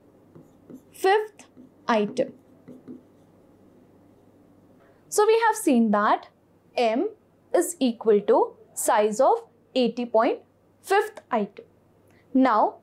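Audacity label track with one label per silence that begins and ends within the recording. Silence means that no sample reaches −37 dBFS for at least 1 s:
2.960000	5.120000	silence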